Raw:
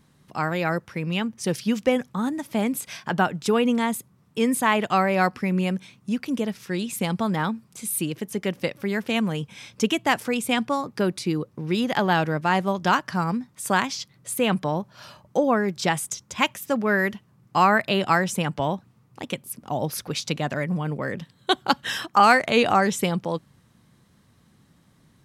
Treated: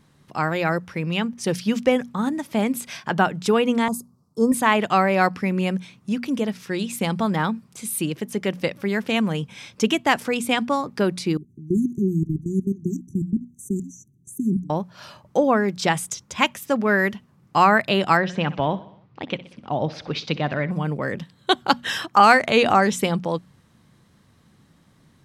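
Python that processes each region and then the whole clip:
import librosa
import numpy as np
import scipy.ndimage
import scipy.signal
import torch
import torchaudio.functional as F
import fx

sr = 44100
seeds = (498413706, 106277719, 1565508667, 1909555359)

y = fx.chain(x, sr, fx.cheby1_bandstop(low_hz=1200.0, high_hz=4600.0, order=3),
    fx.band_widen(depth_pct=40), at=(3.88, 4.52))
y = fx.chain(y, sr, fx.low_shelf(hz=270.0, db=7.5),
    fx.level_steps(step_db=20),
    fx.brickwall_bandstop(low_hz=410.0, high_hz=5800.0), at=(11.37, 14.7))
y = fx.chain(y, sr, fx.lowpass(hz=4400.0, slope=24),
    fx.echo_feedback(ms=62, feedback_pct=57, wet_db=-17.5), at=(18.17, 20.71))
y = fx.high_shelf(y, sr, hz=10000.0, db=-6.0)
y = fx.hum_notches(y, sr, base_hz=60, count=4)
y = y * librosa.db_to_amplitude(2.5)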